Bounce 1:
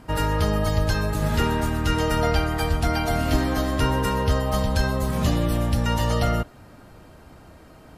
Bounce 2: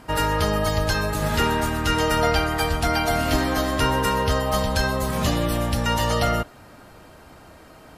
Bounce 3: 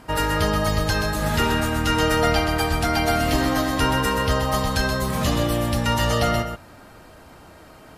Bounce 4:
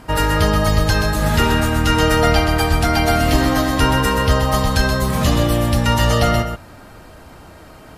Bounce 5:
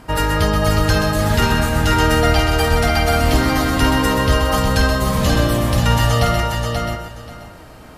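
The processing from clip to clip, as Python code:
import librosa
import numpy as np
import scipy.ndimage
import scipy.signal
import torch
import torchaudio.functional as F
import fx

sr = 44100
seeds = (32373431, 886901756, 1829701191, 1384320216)

y1 = fx.low_shelf(x, sr, hz=350.0, db=-7.5)
y1 = y1 * 10.0 ** (4.5 / 20.0)
y2 = y1 + 10.0 ** (-7.0 / 20.0) * np.pad(y1, (int(129 * sr / 1000.0), 0))[:len(y1)]
y3 = fx.low_shelf(y2, sr, hz=120.0, db=5.0)
y3 = y3 * 10.0 ** (4.0 / 20.0)
y4 = fx.echo_feedback(y3, sr, ms=533, feedback_pct=18, wet_db=-5.0)
y4 = y4 * 10.0 ** (-1.0 / 20.0)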